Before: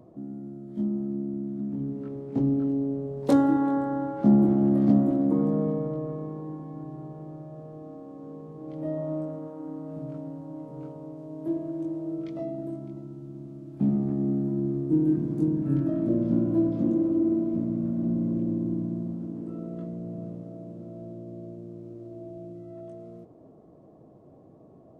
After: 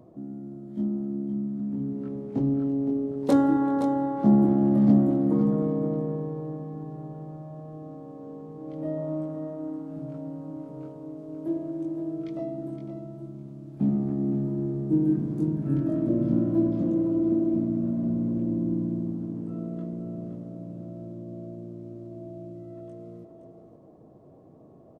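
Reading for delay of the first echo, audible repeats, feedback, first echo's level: 0.517 s, 1, no steady repeat, -9.0 dB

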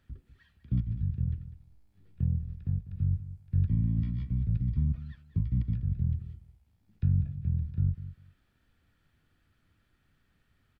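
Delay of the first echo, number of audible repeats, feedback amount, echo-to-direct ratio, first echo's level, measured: 0.198 s, 2, 16%, -14.0 dB, -14.0 dB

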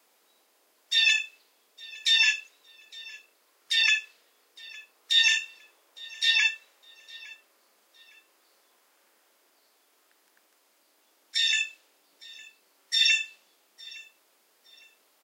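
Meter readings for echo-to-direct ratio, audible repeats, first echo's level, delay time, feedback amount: -21.5 dB, 2, -22.0 dB, 0.86 s, 28%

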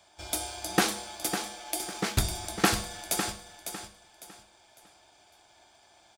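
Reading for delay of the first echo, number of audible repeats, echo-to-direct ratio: 0.553 s, 3, -8.0 dB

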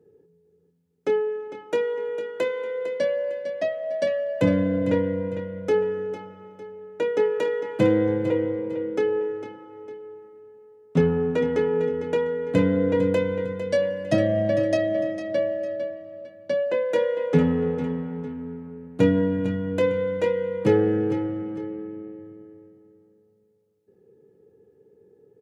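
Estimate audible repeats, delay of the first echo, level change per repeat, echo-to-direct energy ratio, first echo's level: 2, 0.453 s, -9.0 dB, -10.0 dB, -10.5 dB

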